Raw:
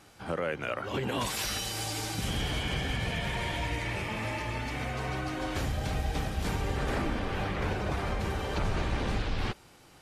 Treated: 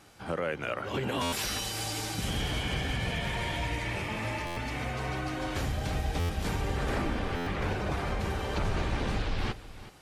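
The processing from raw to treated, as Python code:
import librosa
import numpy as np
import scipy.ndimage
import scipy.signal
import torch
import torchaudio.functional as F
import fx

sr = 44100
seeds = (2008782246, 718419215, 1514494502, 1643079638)

p1 = x + fx.echo_single(x, sr, ms=375, db=-15.5, dry=0)
y = fx.buffer_glitch(p1, sr, at_s=(1.22, 4.46, 6.19, 7.36), block=512, repeats=8)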